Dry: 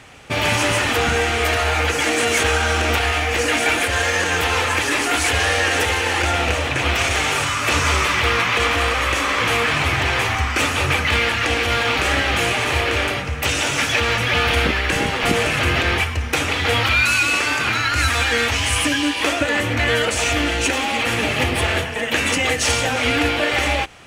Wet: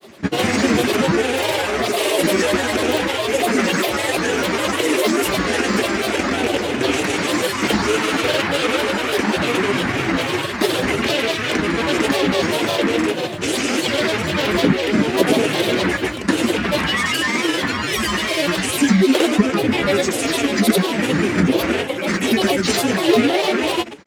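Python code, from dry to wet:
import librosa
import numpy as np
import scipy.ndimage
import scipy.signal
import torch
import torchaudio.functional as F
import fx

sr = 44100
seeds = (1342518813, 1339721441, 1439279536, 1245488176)

y = scipy.signal.sosfilt(scipy.signal.butter(4, 100.0, 'highpass', fs=sr, output='sos'), x)
y = fx.high_shelf(y, sr, hz=4700.0, db=5.0)
y = fx.small_body(y, sr, hz=(270.0, 390.0), ring_ms=60, db=17)
y = fx.granulator(y, sr, seeds[0], grain_ms=100.0, per_s=20.0, spray_ms=100.0, spread_st=7)
y = y * librosa.db_to_amplitude(-3.0)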